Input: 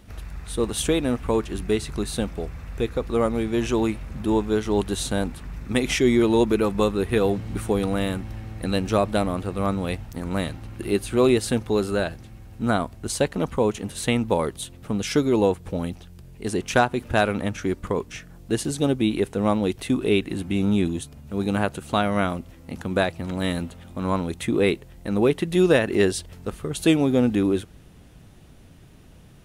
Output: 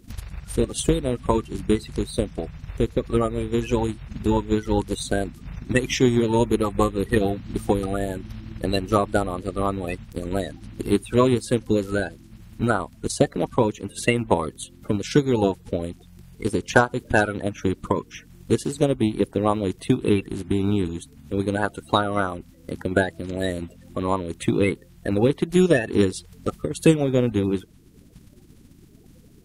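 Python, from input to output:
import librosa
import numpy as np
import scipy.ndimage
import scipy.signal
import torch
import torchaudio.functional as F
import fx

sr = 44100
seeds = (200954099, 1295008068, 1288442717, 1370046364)

y = fx.spec_quant(x, sr, step_db=30)
y = fx.transient(y, sr, attack_db=7, sustain_db=-3)
y = y * librosa.db_to_amplitude(-1.5)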